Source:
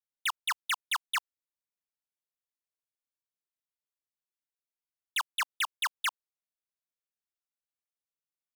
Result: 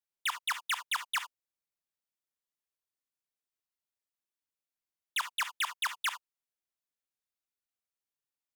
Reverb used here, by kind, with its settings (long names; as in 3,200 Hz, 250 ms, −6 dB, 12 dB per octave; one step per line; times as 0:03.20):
reverb whose tail is shaped and stops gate 90 ms rising, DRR 10.5 dB
level −1.5 dB